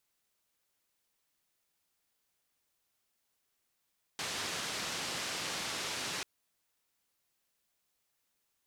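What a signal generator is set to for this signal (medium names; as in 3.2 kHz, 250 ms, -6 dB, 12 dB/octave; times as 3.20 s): noise band 99–5700 Hz, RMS -38 dBFS 2.04 s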